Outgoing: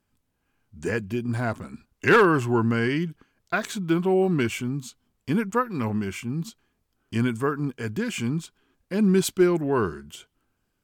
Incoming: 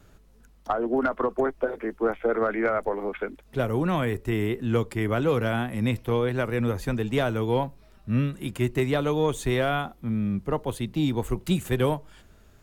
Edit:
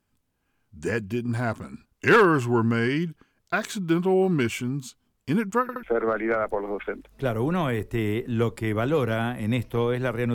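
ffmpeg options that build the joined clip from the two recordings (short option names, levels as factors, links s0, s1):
-filter_complex "[0:a]apad=whole_dur=10.34,atrim=end=10.34,asplit=3[s0][s1][s2];[s0]atrim=end=5.692[s3];[s1]atrim=start=5.618:end=5.692[s4];[s2]atrim=start=5.618:end=5.692[s5];[1:a]atrim=start=2.168:end=6.68[s6];[s3][s4]acrossfade=d=0.004:c1=hsin:c2=hsin[s7];[s7][s5]acrossfade=d=0.004:c1=hsin:c2=hsin[s8];[s8][s6]acrossfade=d=0.004:c1=hsin:c2=hsin"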